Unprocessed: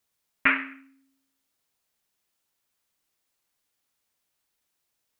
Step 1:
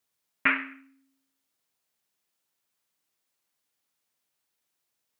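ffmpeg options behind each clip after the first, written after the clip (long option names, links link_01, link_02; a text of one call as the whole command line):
ffmpeg -i in.wav -af "highpass=97,volume=-2dB" out.wav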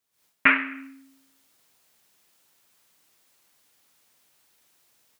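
ffmpeg -i in.wav -af "dynaudnorm=framelen=120:gausssize=3:maxgain=16.5dB,volume=-1dB" out.wav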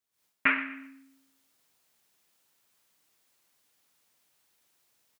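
ffmpeg -i in.wav -af "aecho=1:1:119|238|357:0.168|0.0537|0.0172,volume=-6.5dB" out.wav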